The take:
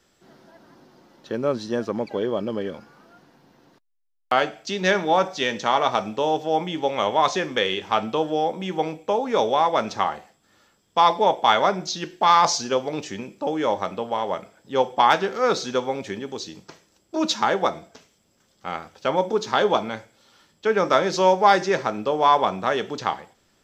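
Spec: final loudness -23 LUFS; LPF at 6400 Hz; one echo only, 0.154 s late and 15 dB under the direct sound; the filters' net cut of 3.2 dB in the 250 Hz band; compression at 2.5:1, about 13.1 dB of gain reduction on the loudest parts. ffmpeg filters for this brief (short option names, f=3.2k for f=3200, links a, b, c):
-af "lowpass=6.4k,equalizer=f=250:t=o:g=-4.5,acompressor=threshold=-32dB:ratio=2.5,aecho=1:1:154:0.178,volume=10dB"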